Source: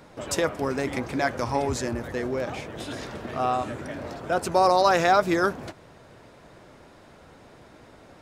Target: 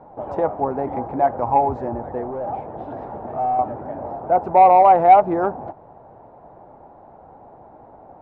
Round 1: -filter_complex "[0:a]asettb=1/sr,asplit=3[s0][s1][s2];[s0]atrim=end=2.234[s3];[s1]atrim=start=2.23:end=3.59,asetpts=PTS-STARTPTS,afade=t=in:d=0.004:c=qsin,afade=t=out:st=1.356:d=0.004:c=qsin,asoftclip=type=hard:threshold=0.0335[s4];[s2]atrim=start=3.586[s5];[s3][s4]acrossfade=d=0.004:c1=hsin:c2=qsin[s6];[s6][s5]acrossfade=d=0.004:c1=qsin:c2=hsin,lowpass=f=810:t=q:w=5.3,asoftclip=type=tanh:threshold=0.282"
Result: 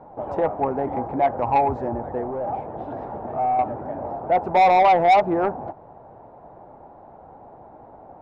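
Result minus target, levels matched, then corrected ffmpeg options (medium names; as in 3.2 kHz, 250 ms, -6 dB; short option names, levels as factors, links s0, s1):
saturation: distortion +12 dB
-filter_complex "[0:a]asettb=1/sr,asplit=3[s0][s1][s2];[s0]atrim=end=2.234[s3];[s1]atrim=start=2.23:end=3.59,asetpts=PTS-STARTPTS,afade=t=in:d=0.004:c=qsin,afade=t=out:st=1.356:d=0.004:c=qsin,asoftclip=type=hard:threshold=0.0335[s4];[s2]atrim=start=3.586[s5];[s3][s4]acrossfade=d=0.004:c1=hsin:c2=qsin[s6];[s6][s5]acrossfade=d=0.004:c1=qsin:c2=hsin,lowpass=f=810:t=q:w=5.3,asoftclip=type=tanh:threshold=0.841"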